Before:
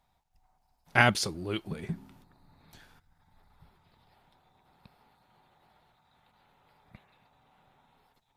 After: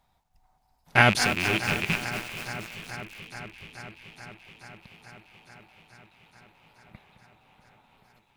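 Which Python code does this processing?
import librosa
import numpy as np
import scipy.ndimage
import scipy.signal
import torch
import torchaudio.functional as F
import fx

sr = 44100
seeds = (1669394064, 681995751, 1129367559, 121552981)

y = fx.rattle_buzz(x, sr, strikes_db=-41.0, level_db=-17.0)
y = fx.echo_alternate(y, sr, ms=215, hz=2500.0, feedback_pct=88, wet_db=-12.5)
y = fx.echo_crushed(y, sr, ms=236, feedback_pct=80, bits=6, wet_db=-10)
y = y * librosa.db_to_amplitude(3.5)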